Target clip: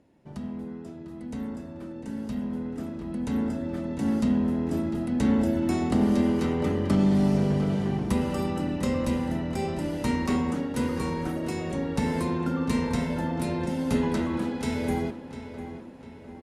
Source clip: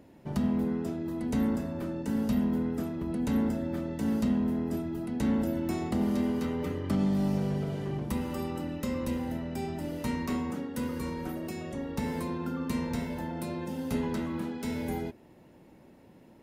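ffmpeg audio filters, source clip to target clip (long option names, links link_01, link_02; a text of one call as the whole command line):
ffmpeg -i in.wav -filter_complex "[0:a]lowpass=frequency=11000:width=0.5412,lowpass=frequency=11000:width=1.3066,asplit=2[link_01][link_02];[link_02]adelay=700,lowpass=frequency=4000:poles=1,volume=-11dB,asplit=2[link_03][link_04];[link_04]adelay=700,lowpass=frequency=4000:poles=1,volume=0.52,asplit=2[link_05][link_06];[link_06]adelay=700,lowpass=frequency=4000:poles=1,volume=0.52,asplit=2[link_07][link_08];[link_08]adelay=700,lowpass=frequency=4000:poles=1,volume=0.52,asplit=2[link_09][link_10];[link_10]adelay=700,lowpass=frequency=4000:poles=1,volume=0.52,asplit=2[link_11][link_12];[link_12]adelay=700,lowpass=frequency=4000:poles=1,volume=0.52[link_13];[link_03][link_05][link_07][link_09][link_11][link_13]amix=inputs=6:normalize=0[link_14];[link_01][link_14]amix=inputs=2:normalize=0,dynaudnorm=framelen=450:gausssize=17:maxgain=13.5dB,volume=-7.5dB" out.wav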